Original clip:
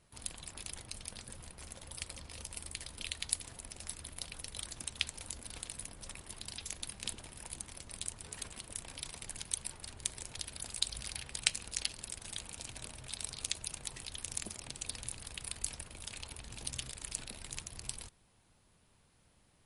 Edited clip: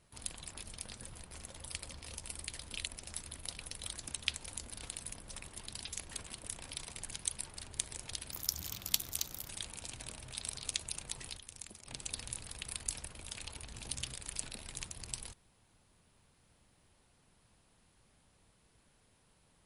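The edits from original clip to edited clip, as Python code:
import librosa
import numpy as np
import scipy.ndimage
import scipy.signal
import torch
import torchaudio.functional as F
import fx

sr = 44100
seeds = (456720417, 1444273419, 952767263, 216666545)

y = fx.edit(x, sr, fx.cut(start_s=0.66, length_s=0.27),
    fx.cut(start_s=3.13, length_s=0.46),
    fx.cut(start_s=6.83, length_s=1.53),
    fx.speed_span(start_s=10.57, length_s=1.68, speed=1.42),
    fx.clip_gain(start_s=14.13, length_s=0.5, db=-9.0), tone=tone)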